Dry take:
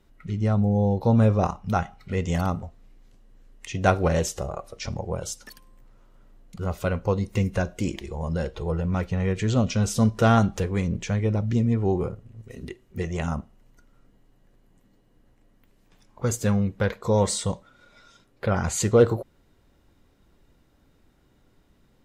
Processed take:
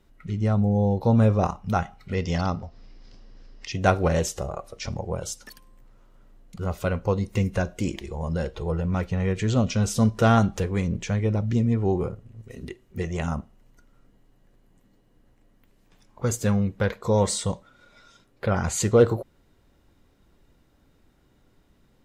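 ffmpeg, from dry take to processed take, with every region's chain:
-filter_complex "[0:a]asettb=1/sr,asplit=3[a][b][c];[a]atrim=end=2.144[d];[b]atrim=start=2.14:end=3.72,asetpts=PTS-STARTPTS,afade=t=in:d=0.004:c=qsin,afade=t=out:st=1.576:d=0.004:c=qsin,lowpass=f=5.1k:t=q:w=8,bass=f=250:g=-1,treble=f=4k:g=-7,acompressor=mode=upward:threshold=-38dB:ratio=2.5:attack=3.2:release=140:knee=2.83:detection=peak[e];[c]atrim=start=3.716[f];[d][e]acrossfade=d=0.004:c1=hsin:c2=qsin[g];[g][f]acrossfade=d=0.004:c1=qsin:c2=hsin"

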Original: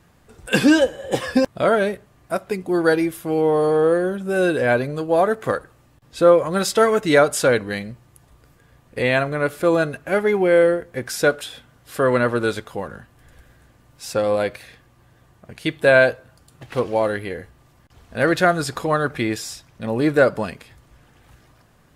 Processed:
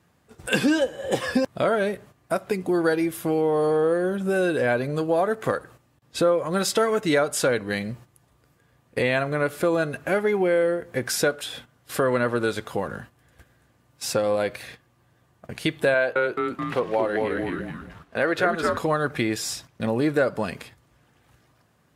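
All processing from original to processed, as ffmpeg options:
-filter_complex "[0:a]asettb=1/sr,asplit=3[a][b][c];[a]atrim=end=15.944[d];[b]atrim=start=15.94:end=18.78,asetpts=PTS-STARTPTS,afade=t=in:d=0.004:c=qsin,afade=t=out:st=2.836:d=0.004:c=qsin,bass=f=250:g=-11,treble=f=4k:g=-8,asplit=6[e][f][g][h][i][j];[f]adelay=215,afreqshift=-120,volume=-4dB[k];[g]adelay=430,afreqshift=-240,volume=-11.5dB[l];[h]adelay=645,afreqshift=-360,volume=-19.1dB[m];[i]adelay=860,afreqshift=-480,volume=-26.6dB[n];[j]adelay=1075,afreqshift=-600,volume=-34.1dB[o];[e][k][l][m][n][o]amix=inputs=6:normalize=0,atrim=end_sample=125244[p];[c]atrim=start=18.776[q];[d][p]acrossfade=d=0.004:c1=hsin:c2=qsin[r];[r][q]acrossfade=d=0.004:c1=qsin:c2=hsin,agate=range=-11dB:threshold=-45dB:ratio=16:detection=peak,highpass=83,acompressor=threshold=-27dB:ratio=2.5,volume=4dB"

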